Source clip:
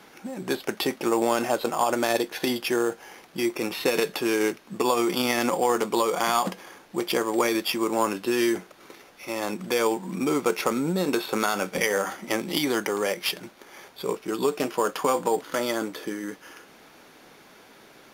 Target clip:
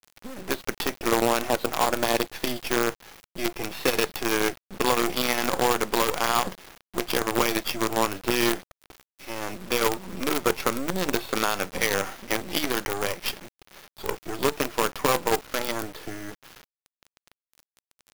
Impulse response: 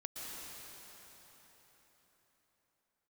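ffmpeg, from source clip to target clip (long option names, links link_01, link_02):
-af "bandreject=frequency=75.79:width_type=h:width=4,bandreject=frequency=151.58:width_type=h:width=4,acrusher=bits=4:dc=4:mix=0:aa=0.000001"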